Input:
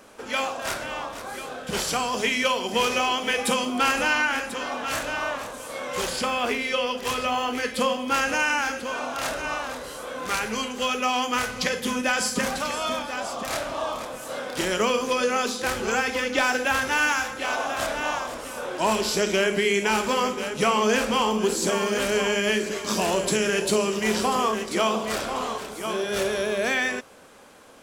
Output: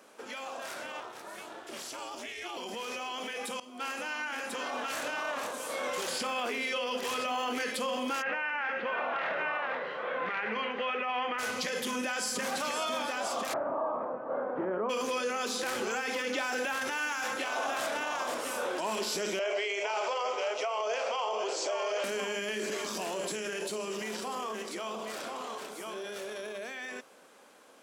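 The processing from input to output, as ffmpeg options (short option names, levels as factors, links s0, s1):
-filter_complex "[0:a]asettb=1/sr,asplit=3[s0][s1][s2];[s0]atrim=end=1.004[s3];[s1]atrim=start=1:end=2.57,asetpts=PTS-STARTPTS,afade=t=in:d=0.004:c=qsin,afade=t=out:st=1.566:d=0.004:c=qsin,aeval=exprs='val(0)*sin(2*PI*180*n/s)':c=same[s4];[s2]atrim=start=2.566[s5];[s3][s4]acrossfade=d=0.004:c1=hsin:c2=qsin[s6];[s6][s5]acrossfade=d=0.004:c1=qsin:c2=hsin,asplit=3[s7][s8][s9];[s7]afade=t=out:st=8.21:d=0.02[s10];[s8]highpass=150,equalizer=f=170:t=q:w=4:g=7,equalizer=f=270:t=q:w=4:g=-10,equalizer=f=1900:t=q:w=4:g=7,lowpass=f=2800:w=0.5412,lowpass=f=2800:w=1.3066,afade=t=in:st=8.21:d=0.02,afade=t=out:st=11.38:d=0.02[s11];[s9]afade=t=in:st=11.38:d=0.02[s12];[s10][s11][s12]amix=inputs=3:normalize=0,asplit=3[s13][s14][s15];[s13]afade=t=out:st=13.52:d=0.02[s16];[s14]lowpass=f=1200:w=0.5412,lowpass=f=1200:w=1.3066,afade=t=in:st=13.52:d=0.02,afade=t=out:st=14.89:d=0.02[s17];[s15]afade=t=in:st=14.89:d=0.02[s18];[s16][s17][s18]amix=inputs=3:normalize=0,asettb=1/sr,asplit=3[s19][s20][s21];[s19]atrim=end=19.394[s22];[s20]atrim=start=19.39:end=22.04,asetpts=PTS-STARTPTS,afade=t=in:d=0.004:c=qsin,afade=t=out:st=2.646:d=0.004:c=qsin,highpass=f=480:w=0.5412,highpass=f=480:w=1.3066,equalizer=f=650:t=q:w=4:g=10,equalizer=f=1700:t=q:w=4:g=-7,equalizer=f=3900:t=q:w=4:g=-7,lowpass=f=5900:w=0.5412,lowpass=f=5900:w=1.3066[s23];[s21]atrim=start=22.036[s24];[s22][s23]acrossfade=d=0.004:c1=hsin:c2=qsin[s25];[s25][s24]acrossfade=d=0.004:c1=qsin:c2=hsin,asplit=2[s26][s27];[s26]atrim=end=3.6,asetpts=PTS-STARTPTS,afade=t=out:st=3.596:d=0.004:c=hsin:silence=0.0794328[s28];[s27]atrim=start=3.6,asetpts=PTS-STARTPTS,afade=t=in:d=1.06:silence=0.0794328[s29];[s28][s29]concat=n=2:v=0:a=1,alimiter=level_in=1.06:limit=0.0631:level=0:latency=1:release=31,volume=0.944,dynaudnorm=f=290:g=31:m=2.24,highpass=240,volume=0.473"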